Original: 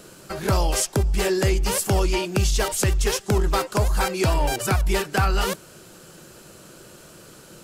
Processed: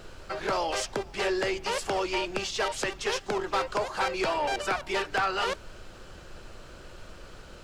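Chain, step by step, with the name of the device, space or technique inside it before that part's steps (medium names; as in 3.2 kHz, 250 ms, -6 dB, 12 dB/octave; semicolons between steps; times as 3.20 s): aircraft cabin announcement (band-pass 450–4100 Hz; saturation -20 dBFS, distortion -16 dB; brown noise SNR 14 dB)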